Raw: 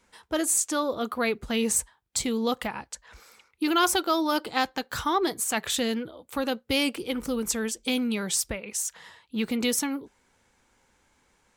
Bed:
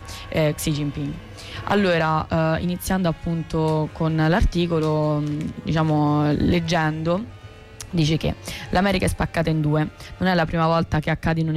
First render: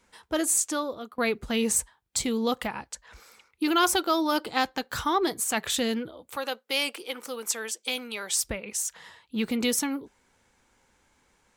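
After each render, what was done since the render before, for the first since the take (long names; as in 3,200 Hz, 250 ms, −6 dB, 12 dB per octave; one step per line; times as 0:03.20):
0:00.65–0:01.18: fade out, to −23.5 dB
0:06.36–0:08.39: high-pass filter 570 Hz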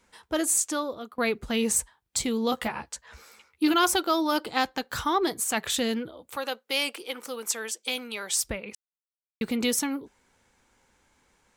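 0:02.51–0:03.74: double-tracking delay 13 ms −4 dB
0:08.75–0:09.41: silence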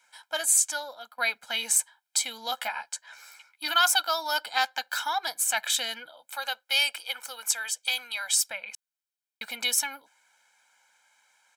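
high-pass filter 1,000 Hz 12 dB per octave
comb filter 1.3 ms, depth 100%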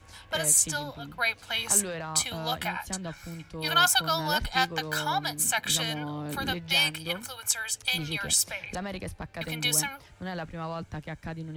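mix in bed −16 dB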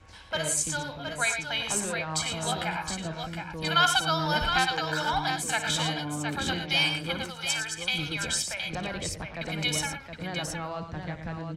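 high-frequency loss of the air 62 metres
multi-tap delay 57/95/114/717 ms −13.5/−12/−9.5/−6.5 dB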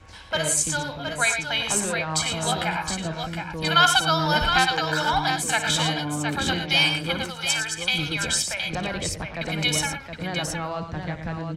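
level +5 dB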